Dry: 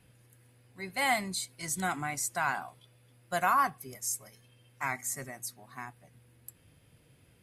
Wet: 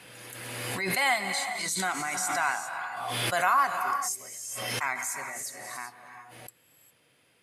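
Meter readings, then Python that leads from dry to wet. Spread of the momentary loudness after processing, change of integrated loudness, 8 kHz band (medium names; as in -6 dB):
17 LU, +3.5 dB, +4.0 dB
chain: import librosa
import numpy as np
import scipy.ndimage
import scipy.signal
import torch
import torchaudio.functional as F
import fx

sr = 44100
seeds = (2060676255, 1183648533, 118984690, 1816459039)

y = fx.weighting(x, sr, curve='A')
y = fx.rev_gated(y, sr, seeds[0], gate_ms=430, shape='rising', drr_db=7.0)
y = fx.pre_swell(y, sr, db_per_s=26.0)
y = y * 10.0 ** (2.0 / 20.0)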